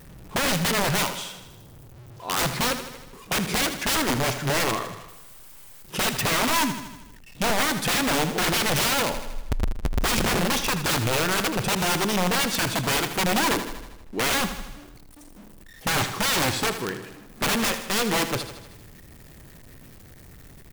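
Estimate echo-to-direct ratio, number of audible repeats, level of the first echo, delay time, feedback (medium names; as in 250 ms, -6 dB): -8.5 dB, 6, -10.5 dB, 79 ms, 59%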